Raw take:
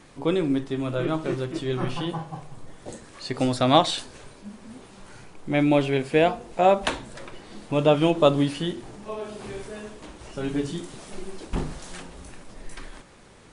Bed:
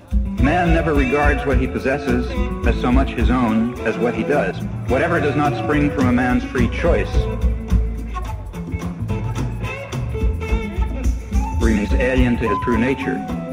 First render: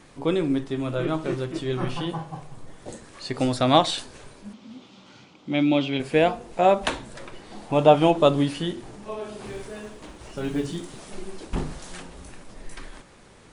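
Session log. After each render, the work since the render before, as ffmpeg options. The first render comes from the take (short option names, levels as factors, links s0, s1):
-filter_complex "[0:a]asettb=1/sr,asplit=3[s0][s1][s2];[s0]atrim=end=4.534[s3];[s1]atrim=start=4.53:end=6,asetpts=PTS-STARTPTS,afade=t=in:d=0.004:c=qsin,afade=t=out:st=1.466:d=0.004:c=qsin,highpass=160,equalizer=f=260:t=q:w=4:g=4,equalizer=f=420:t=q:w=4:g=-9,equalizer=f=680:t=q:w=4:g=-5,equalizer=f=1000:t=q:w=4:g=-4,equalizer=f=1700:t=q:w=4:g=-10,equalizer=f=3300:t=q:w=4:g=6,lowpass=f=6000:w=0.5412,lowpass=f=6000:w=1.3066[s4];[s2]atrim=start=5.996[s5];[s3][s4]acrossfade=d=0.004:c1=hsin:c2=qsin[s6];[s6][s5]acrossfade=d=0.004:c1=qsin:c2=hsin,asettb=1/sr,asplit=3[s7][s8][s9];[s7]atrim=end=7.514[s10];[s8]atrim=start=7.51:end=8.17,asetpts=PTS-STARTPTS,afade=t=in:d=0.004:c=qsin,afade=t=out:st=0.656:d=0.004:c=qsin,equalizer=f=780:w=2.3:g=9.5[s11];[s9]atrim=start=8.166[s12];[s10][s11]acrossfade=d=0.004:c1=hsin:c2=qsin[s13];[s13][s12]acrossfade=d=0.004:c1=qsin:c2=hsin,asettb=1/sr,asplit=3[s14][s15][s16];[s14]atrim=end=9.454[s17];[s15]atrim=start=9.45:end=11,asetpts=PTS-STARTPTS,afade=t=in:d=0.004:c=qsin,afade=t=out:st=1.546:d=0.004:c=qsin,acrusher=bits=9:mode=log:mix=0:aa=0.000001[s18];[s16]atrim=start=10.996[s19];[s17][s18]acrossfade=d=0.004:c1=hsin:c2=qsin[s20];[s20][s19]acrossfade=d=0.004:c1=qsin:c2=hsin"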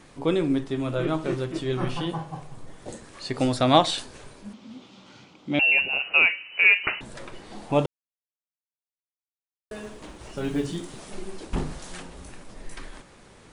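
-filter_complex "[0:a]asettb=1/sr,asplit=3[s0][s1][s2];[s0]atrim=end=5.594[s3];[s1]atrim=start=5.59:end=7.01,asetpts=PTS-STARTPTS,afade=t=in:d=0.004:c=qsin,afade=t=out:st=1.416:d=0.004:c=qsin,lowpass=f=2600:t=q:w=0.5098,lowpass=f=2600:t=q:w=0.6013,lowpass=f=2600:t=q:w=0.9,lowpass=f=2600:t=q:w=2.563,afreqshift=-3000[s4];[s2]atrim=start=7.006[s5];[s3][s4]acrossfade=d=0.004:c1=hsin:c2=qsin[s6];[s6][s5]acrossfade=d=0.004:c1=qsin:c2=hsin,asplit=3[s7][s8][s9];[s7]atrim=end=7.86,asetpts=PTS-STARTPTS,afade=t=out:st=7.856:d=0.004:c=hsin[s10];[s8]atrim=start=7.86:end=9.71,asetpts=PTS-STARTPTS,volume=0[s11];[s9]atrim=start=9.71,asetpts=PTS-STARTPTS,afade=t=in:d=0.004:c=hsin[s12];[s10][s11][s12]concat=n=3:v=0:a=1"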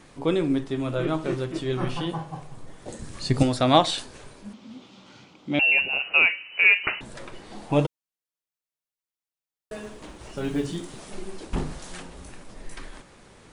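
-filter_complex "[0:a]asettb=1/sr,asplit=3[s0][s1][s2];[s0]atrim=end=2.994[s3];[s1]atrim=start=2.99:end=3.43,asetpts=PTS-STARTPTS,afade=t=in:d=0.004:c=qsin,afade=t=out:st=0.436:d=0.004:c=qsin,bass=f=250:g=14,treble=f=4000:g=6[s4];[s2]atrim=start=3.426[s5];[s3][s4]acrossfade=d=0.004:c1=hsin:c2=qsin[s6];[s6][s5]acrossfade=d=0.004:c1=qsin:c2=hsin,asettb=1/sr,asplit=3[s7][s8][s9];[s7]atrim=end=7.714[s10];[s8]atrim=start=7.71:end=9.77,asetpts=PTS-STARTPTS,afade=t=in:d=0.004:c=qsin,afade=t=out:st=2.056:d=0.004:c=qsin,aecho=1:1:6.3:0.58,atrim=end_sample=90846[s11];[s9]atrim=start=9.766[s12];[s10][s11]acrossfade=d=0.004:c1=hsin:c2=qsin[s13];[s13][s12]acrossfade=d=0.004:c1=qsin:c2=hsin"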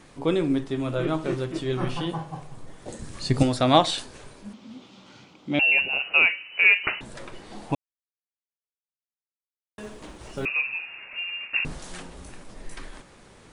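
-filter_complex "[0:a]asettb=1/sr,asplit=3[s0][s1][s2];[s0]atrim=end=10.454[s3];[s1]atrim=start=10.45:end=11.65,asetpts=PTS-STARTPTS,afade=t=in:d=0.004:c=qsin,afade=t=out:st=1.196:d=0.004:c=qsin,lowpass=f=2400:t=q:w=0.5098,lowpass=f=2400:t=q:w=0.6013,lowpass=f=2400:t=q:w=0.9,lowpass=f=2400:t=q:w=2.563,afreqshift=-2800[s4];[s2]atrim=start=11.646[s5];[s3][s4]acrossfade=d=0.004:c1=hsin:c2=qsin[s6];[s6][s5]acrossfade=d=0.004:c1=qsin:c2=hsin,asplit=3[s7][s8][s9];[s7]atrim=end=7.75,asetpts=PTS-STARTPTS,afade=t=out:st=7.746:d=0.004:c=hsin[s10];[s8]atrim=start=7.75:end=9.78,asetpts=PTS-STARTPTS,volume=0[s11];[s9]atrim=start=9.78,asetpts=PTS-STARTPTS,afade=t=in:d=0.004:c=hsin[s12];[s10][s11][s12]concat=n=3:v=0:a=1"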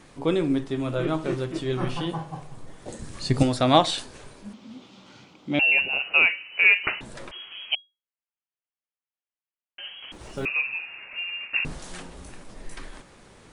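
-filter_complex "[0:a]asettb=1/sr,asplit=3[s0][s1][s2];[s0]atrim=end=7.314[s3];[s1]atrim=start=7.31:end=10.12,asetpts=PTS-STARTPTS,afade=t=in:d=0.004:c=qsin,afade=t=out:st=2.806:d=0.004:c=qsin,lowpass=f=2800:t=q:w=0.5098,lowpass=f=2800:t=q:w=0.6013,lowpass=f=2800:t=q:w=0.9,lowpass=f=2800:t=q:w=2.563,afreqshift=-3300[s4];[s2]atrim=start=10.116[s5];[s3][s4]acrossfade=d=0.004:c1=hsin:c2=qsin[s6];[s6][s5]acrossfade=d=0.004:c1=qsin:c2=hsin"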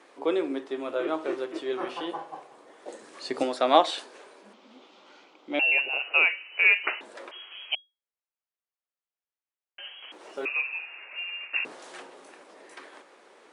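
-af "highpass=f=350:w=0.5412,highpass=f=350:w=1.3066,highshelf=f=4200:g=-11"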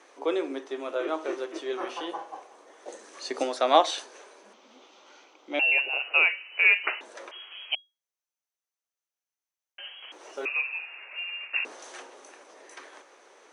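-af "highpass=320,equalizer=f=6100:w=8:g=12.5"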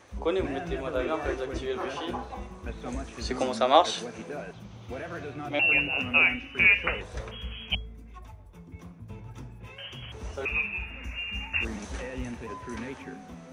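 -filter_complex "[1:a]volume=0.1[s0];[0:a][s0]amix=inputs=2:normalize=0"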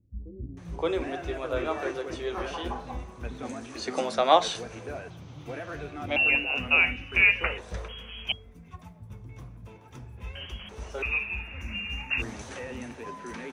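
-filter_complex "[0:a]acrossover=split=220[s0][s1];[s1]adelay=570[s2];[s0][s2]amix=inputs=2:normalize=0"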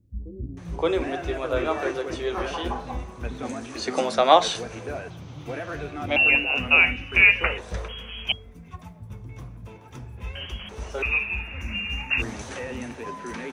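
-af "volume=1.68,alimiter=limit=0.794:level=0:latency=1"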